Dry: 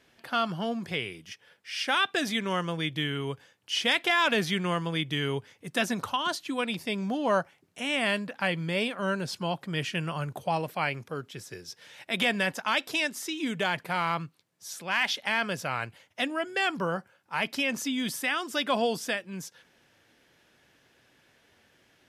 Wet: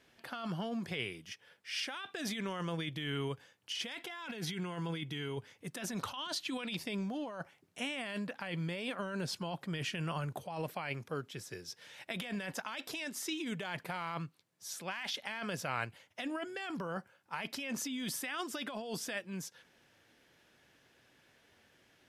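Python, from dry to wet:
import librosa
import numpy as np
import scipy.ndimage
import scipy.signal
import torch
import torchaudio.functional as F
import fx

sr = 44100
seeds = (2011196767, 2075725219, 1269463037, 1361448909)

y = fx.peak_eq(x, sr, hz=3500.0, db=6.0, octaves=1.7, at=(5.97, 6.84))
y = fx.over_compress(y, sr, threshold_db=-32.0, ratio=-1.0)
y = fx.notch_comb(y, sr, f0_hz=600.0, at=(3.95, 5.37))
y = y * 10.0 ** (-6.5 / 20.0)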